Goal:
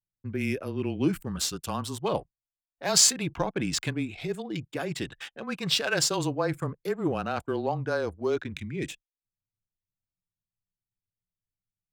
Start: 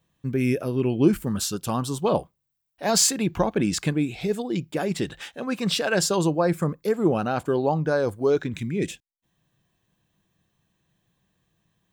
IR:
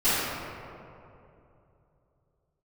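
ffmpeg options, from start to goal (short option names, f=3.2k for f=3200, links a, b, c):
-filter_complex "[0:a]anlmdn=0.398,tiltshelf=f=1.4k:g=-5.5,asplit=2[a][b];[b]adynamicsmooth=sensitivity=3:basefreq=2.7k,volume=1dB[c];[a][c]amix=inputs=2:normalize=0,afreqshift=-20,volume=-8.5dB"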